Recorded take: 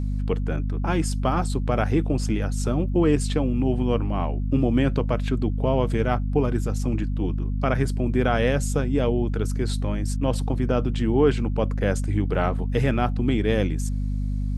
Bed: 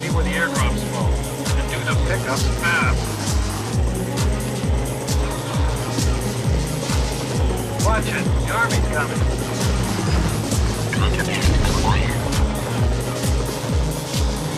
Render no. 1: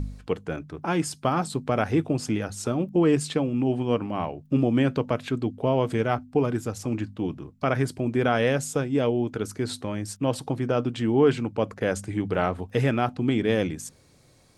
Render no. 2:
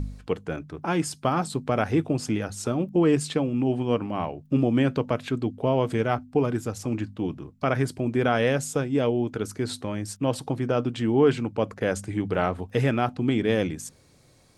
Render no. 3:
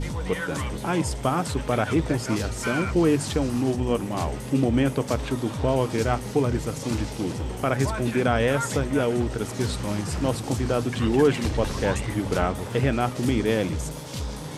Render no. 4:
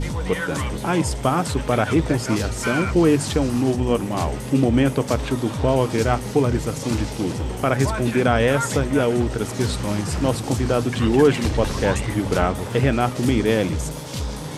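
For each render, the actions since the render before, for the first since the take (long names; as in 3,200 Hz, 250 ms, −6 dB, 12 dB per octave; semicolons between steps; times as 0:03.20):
hum removal 50 Hz, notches 5
no processing that can be heard
mix in bed −11 dB
level +4 dB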